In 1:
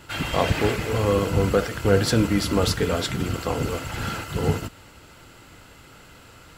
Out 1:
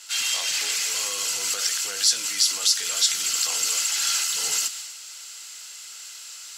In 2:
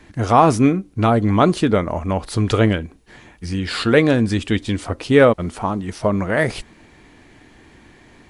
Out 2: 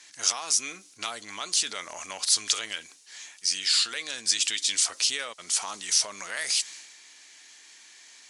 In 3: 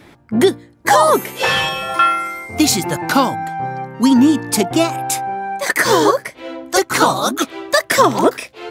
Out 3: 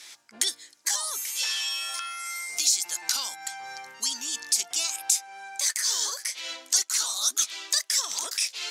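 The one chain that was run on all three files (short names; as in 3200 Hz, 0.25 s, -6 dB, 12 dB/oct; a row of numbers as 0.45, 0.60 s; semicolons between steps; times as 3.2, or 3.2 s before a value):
tilt +3 dB/oct; compressor 10:1, threshold -22 dBFS; transient shaper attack -4 dB, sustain +4 dB; vocal rider within 4 dB 0.5 s; band-pass 6100 Hz, Q 1.8; mismatched tape noise reduction decoder only; normalise peaks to -6 dBFS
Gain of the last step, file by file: +13.0, +11.5, +7.5 dB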